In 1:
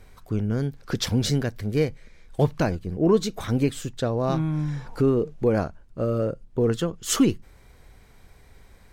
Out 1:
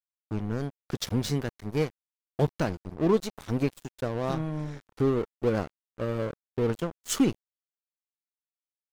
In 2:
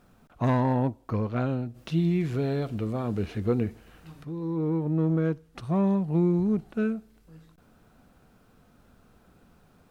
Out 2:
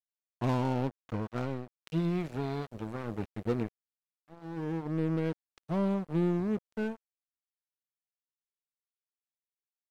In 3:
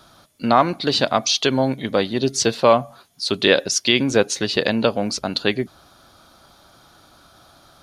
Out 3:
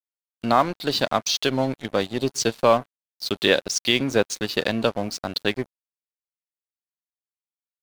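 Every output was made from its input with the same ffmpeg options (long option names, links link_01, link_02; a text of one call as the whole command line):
ffmpeg -i in.wav -af "aeval=exprs='sgn(val(0))*max(abs(val(0))-0.0282,0)':channel_layout=same,volume=-2.5dB" out.wav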